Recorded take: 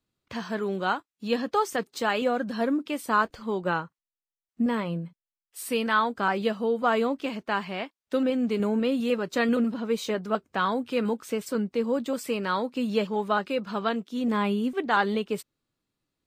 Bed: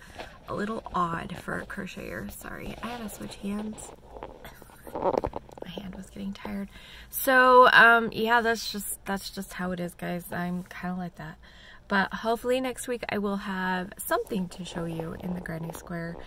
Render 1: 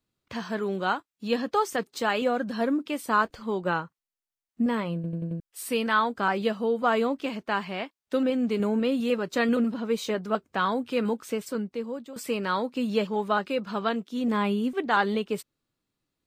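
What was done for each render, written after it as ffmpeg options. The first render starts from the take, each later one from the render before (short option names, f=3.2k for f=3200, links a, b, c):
-filter_complex "[0:a]asplit=7[a][b][c][d][e][f][g];[a]atrim=end=5.042[h];[b]atrim=start=4.948:end=5.042[i];[c]atrim=start=4.948:end=5.042[j];[d]atrim=start=4.948:end=5.042[k];[e]atrim=start=4.948:end=5.042[l];[f]atrim=start=5.398:end=12.16,asetpts=PTS-STARTPTS,afade=t=out:st=5.882:d=0.88:silence=0.177828[m];[g]atrim=start=12.16,asetpts=PTS-STARTPTS,afade=t=in:d=0.004:c=hsin:silence=0.177828[n];[h][i]acrossfade=d=0.004:c1=hsin:c2=hsin[o];[o][j]acrossfade=d=0.004:c1=hsin:c2=hsin[p];[p][k]acrossfade=d=0.004:c1=hsin:c2=hsin[q];[q][l]acrossfade=d=0.004:c1=hsin:c2=hsin[r];[m][n]concat=n=2:v=0:a=1[s];[r][s]acrossfade=d=0.004:c1=hsin:c2=hsin"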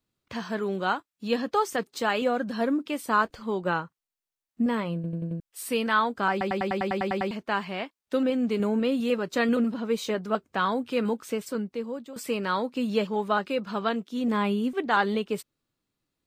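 -filter_complex "[0:a]asplit=11[a][b][c][d][e][f][g][h][i][j][k];[a]atrim=end=6.412[l];[b]atrim=start=6.308:end=6.412[m];[c]atrim=start=6.308:end=6.412[n];[d]atrim=start=6.308:end=6.412[o];[e]atrim=start=6.308:end=6.412[p];[f]atrim=start=6.308:end=6.412[q];[g]atrim=start=6.308:end=6.412[r];[h]atrim=start=6.308:end=6.412[s];[i]atrim=start=6.308:end=6.412[t];[j]atrim=start=6.308:end=6.412[u];[k]atrim=start=7.308[v];[l][m]acrossfade=d=0.004:c1=hsin:c2=hsin[w];[w][n]acrossfade=d=0.004:c1=hsin:c2=hsin[x];[x][o]acrossfade=d=0.004:c1=hsin:c2=hsin[y];[y][p]acrossfade=d=0.004:c1=hsin:c2=hsin[z];[z][q]acrossfade=d=0.004:c1=hsin:c2=hsin[aa];[aa][r]acrossfade=d=0.004:c1=hsin:c2=hsin[ab];[ab][s]acrossfade=d=0.004:c1=hsin:c2=hsin[ac];[ac][t]acrossfade=d=0.004:c1=hsin:c2=hsin[ad];[ad][u]acrossfade=d=0.004:c1=hsin:c2=hsin[ae];[ae][v]acrossfade=d=0.004:c1=hsin:c2=hsin"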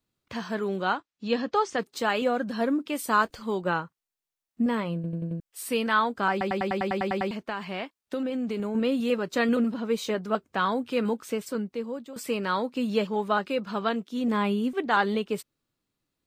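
-filter_complex "[0:a]asettb=1/sr,asplit=3[a][b][c];[a]atrim=end=0.824[d];[b]atrim=start=0.82:end=1.79,asetpts=PTS-STARTPTS,afade=t=in:d=0.004:c=qsin,afade=t=out:st=0.966:d=0.004:c=qsin,lowpass=f=6.6k:w=0.5412,lowpass=f=6.6k:w=1.3066[e];[c]atrim=start=1.786[f];[d][e]acrossfade=d=0.004:c1=hsin:c2=qsin[g];[g][f]acrossfade=d=0.004:c1=qsin:c2=hsin,asettb=1/sr,asplit=3[h][i][j];[h]atrim=end=2.954[k];[i]atrim=start=2.95:end=3.62,asetpts=PTS-STARTPTS,afade=t=in:d=0.004:c=qsin,afade=t=out:st=0.666:d=0.004:c=qsin,highshelf=f=4.2k:g=7[l];[j]atrim=start=3.616[m];[k][l]acrossfade=d=0.004:c1=hsin:c2=qsin[n];[n][m]acrossfade=d=0.004:c1=qsin:c2=hsin,asettb=1/sr,asplit=3[o][p][q];[o]atrim=end=7.364[r];[p]atrim=start=7.36:end=8.75,asetpts=PTS-STARTPTS,afade=t=in:d=0.004:c=qsin,afade=t=out:st=1.386:d=0.004:c=qsin,acompressor=threshold=-26dB:ratio=6:attack=3.2:release=140:knee=1:detection=peak[s];[q]atrim=start=8.746[t];[r][s]acrossfade=d=0.004:c1=hsin:c2=qsin[u];[u][t]acrossfade=d=0.004:c1=qsin:c2=hsin"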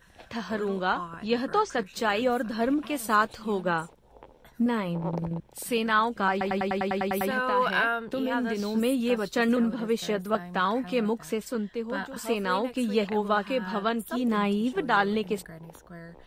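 -filter_complex "[1:a]volume=-9.5dB[a];[0:a][a]amix=inputs=2:normalize=0"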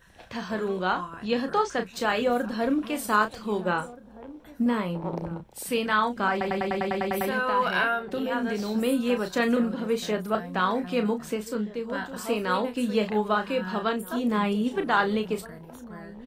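-filter_complex "[0:a]asplit=2[a][b];[b]adelay=33,volume=-8.5dB[c];[a][c]amix=inputs=2:normalize=0,asplit=2[d][e];[e]adelay=1574,volume=-18dB,highshelf=f=4k:g=-35.4[f];[d][f]amix=inputs=2:normalize=0"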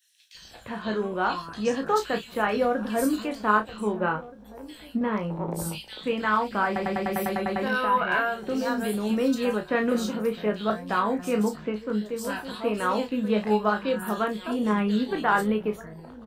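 -filter_complex "[0:a]asplit=2[a][b];[b]adelay=19,volume=-7.5dB[c];[a][c]amix=inputs=2:normalize=0,acrossover=split=3000[d][e];[d]adelay=350[f];[f][e]amix=inputs=2:normalize=0"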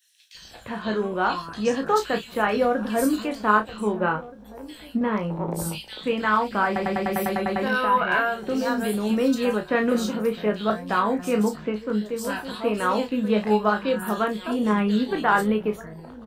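-af "volume=2.5dB"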